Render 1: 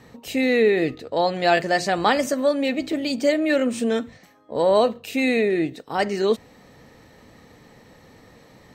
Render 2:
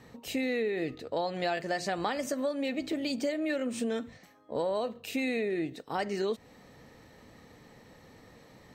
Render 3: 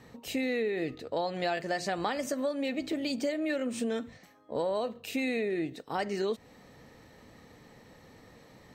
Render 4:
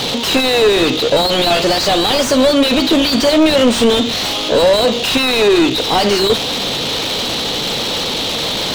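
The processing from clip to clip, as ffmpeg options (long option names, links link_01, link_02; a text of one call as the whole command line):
ffmpeg -i in.wav -af "acompressor=threshold=-23dB:ratio=6,volume=-5dB" out.wav
ffmpeg -i in.wav -af anull out.wav
ffmpeg -i in.wav -filter_complex "[0:a]aeval=exprs='val(0)+0.5*0.00891*sgn(val(0))':channel_layout=same,highshelf=frequency=2500:width_type=q:width=3:gain=12,asplit=2[link_01][link_02];[link_02]highpass=frequency=720:poles=1,volume=34dB,asoftclip=type=tanh:threshold=-8.5dB[link_03];[link_01][link_03]amix=inputs=2:normalize=0,lowpass=frequency=1100:poles=1,volume=-6dB,volume=8.5dB" out.wav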